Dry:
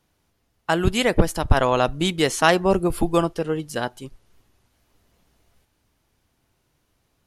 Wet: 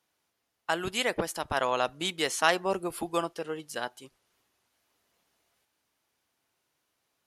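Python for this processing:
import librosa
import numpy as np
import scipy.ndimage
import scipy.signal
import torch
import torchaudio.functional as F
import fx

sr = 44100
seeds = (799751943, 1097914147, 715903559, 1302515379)

y = fx.highpass(x, sr, hz=690.0, slope=6)
y = y * 10.0 ** (-5.0 / 20.0)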